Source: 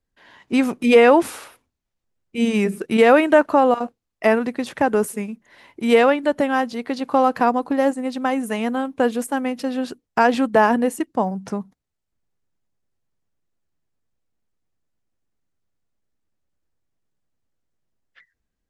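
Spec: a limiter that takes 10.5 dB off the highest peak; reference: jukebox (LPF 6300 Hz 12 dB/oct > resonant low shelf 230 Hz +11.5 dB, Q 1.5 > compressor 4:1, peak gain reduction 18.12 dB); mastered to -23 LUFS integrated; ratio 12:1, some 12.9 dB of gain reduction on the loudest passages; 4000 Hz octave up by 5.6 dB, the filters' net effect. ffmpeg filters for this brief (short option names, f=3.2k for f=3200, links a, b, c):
-af "equalizer=f=4k:t=o:g=8.5,acompressor=threshold=-21dB:ratio=12,alimiter=limit=-18dB:level=0:latency=1,lowpass=6.3k,lowshelf=f=230:t=q:w=1.5:g=11.5,acompressor=threshold=-39dB:ratio=4,volume=17.5dB"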